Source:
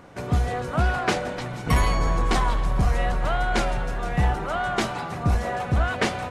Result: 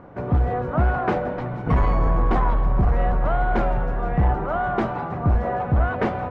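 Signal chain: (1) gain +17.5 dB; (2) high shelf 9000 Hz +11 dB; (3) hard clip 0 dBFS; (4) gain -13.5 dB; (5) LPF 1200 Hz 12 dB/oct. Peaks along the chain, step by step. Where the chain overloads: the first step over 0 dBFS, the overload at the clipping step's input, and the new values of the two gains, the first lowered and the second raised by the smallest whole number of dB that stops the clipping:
+5.0, +6.5, 0.0, -13.5, -13.0 dBFS; step 1, 6.5 dB; step 1 +10.5 dB, step 4 -6.5 dB

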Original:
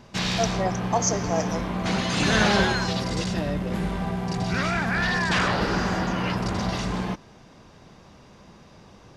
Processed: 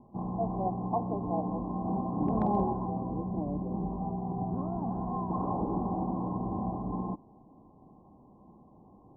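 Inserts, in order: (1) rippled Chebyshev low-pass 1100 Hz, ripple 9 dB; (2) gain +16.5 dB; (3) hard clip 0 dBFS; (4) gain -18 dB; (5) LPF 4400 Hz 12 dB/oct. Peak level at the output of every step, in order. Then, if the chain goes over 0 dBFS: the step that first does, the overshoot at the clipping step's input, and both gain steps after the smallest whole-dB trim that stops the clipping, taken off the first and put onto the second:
-13.0, +3.5, 0.0, -18.0, -18.0 dBFS; step 2, 3.5 dB; step 2 +12.5 dB, step 4 -14 dB

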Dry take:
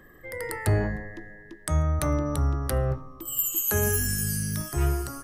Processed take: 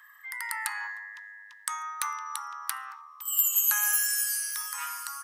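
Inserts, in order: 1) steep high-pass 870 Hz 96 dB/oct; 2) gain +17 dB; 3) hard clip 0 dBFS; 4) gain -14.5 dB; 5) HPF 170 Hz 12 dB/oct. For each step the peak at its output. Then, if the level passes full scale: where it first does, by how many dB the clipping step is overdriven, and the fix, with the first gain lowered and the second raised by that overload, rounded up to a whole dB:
-11.5, +5.5, 0.0, -14.5, -14.0 dBFS; step 2, 5.5 dB; step 2 +11 dB, step 4 -8.5 dB

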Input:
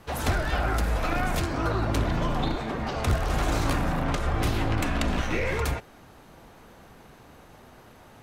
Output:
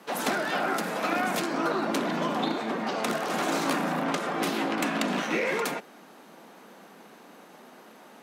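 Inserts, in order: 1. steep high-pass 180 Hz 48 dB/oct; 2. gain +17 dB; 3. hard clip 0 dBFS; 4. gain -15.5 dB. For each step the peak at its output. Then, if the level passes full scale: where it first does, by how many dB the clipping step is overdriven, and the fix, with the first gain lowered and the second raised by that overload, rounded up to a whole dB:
-12.5, +4.5, 0.0, -15.5 dBFS; step 2, 4.5 dB; step 2 +12 dB, step 4 -10.5 dB

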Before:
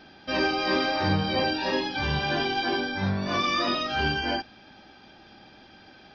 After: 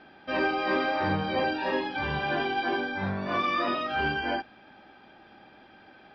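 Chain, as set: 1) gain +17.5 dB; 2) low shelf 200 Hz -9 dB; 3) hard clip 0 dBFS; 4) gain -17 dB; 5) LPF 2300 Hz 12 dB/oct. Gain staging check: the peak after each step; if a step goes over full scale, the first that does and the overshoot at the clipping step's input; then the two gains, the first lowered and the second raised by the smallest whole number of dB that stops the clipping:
+5.5, +3.5, 0.0, -17.0, -16.5 dBFS; step 1, 3.5 dB; step 1 +13.5 dB, step 4 -13 dB

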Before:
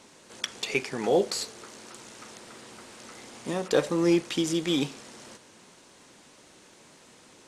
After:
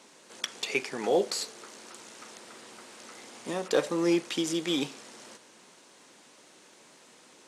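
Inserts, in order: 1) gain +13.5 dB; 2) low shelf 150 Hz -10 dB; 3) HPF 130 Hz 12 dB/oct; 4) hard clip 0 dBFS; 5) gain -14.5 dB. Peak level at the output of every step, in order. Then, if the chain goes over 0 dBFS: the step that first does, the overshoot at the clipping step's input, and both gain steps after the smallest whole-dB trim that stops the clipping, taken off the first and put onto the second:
+5.0, +4.5, +4.5, 0.0, -14.5 dBFS; step 1, 4.5 dB; step 1 +8.5 dB, step 5 -9.5 dB

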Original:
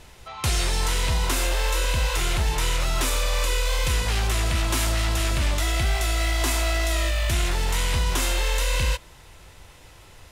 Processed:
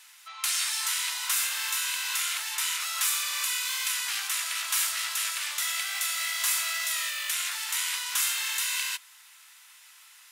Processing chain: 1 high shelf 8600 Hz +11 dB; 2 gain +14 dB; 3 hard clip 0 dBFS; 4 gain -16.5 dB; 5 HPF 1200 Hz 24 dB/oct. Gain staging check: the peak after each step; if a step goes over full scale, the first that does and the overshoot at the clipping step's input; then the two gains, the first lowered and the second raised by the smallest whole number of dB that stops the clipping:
-10.5, +3.5, 0.0, -16.5, -13.0 dBFS; step 2, 3.5 dB; step 2 +10 dB, step 4 -12.5 dB

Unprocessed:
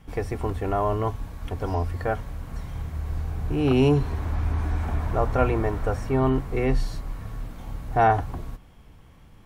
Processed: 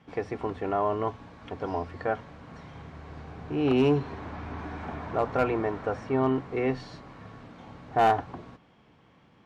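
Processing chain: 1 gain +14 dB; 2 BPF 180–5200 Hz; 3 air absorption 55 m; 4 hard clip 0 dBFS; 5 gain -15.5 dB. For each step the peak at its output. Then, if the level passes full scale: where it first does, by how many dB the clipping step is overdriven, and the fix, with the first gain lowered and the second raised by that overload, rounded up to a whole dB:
+6.5, +5.5, +5.5, 0.0, -15.5 dBFS; step 1, 5.5 dB; step 1 +8 dB, step 5 -9.5 dB

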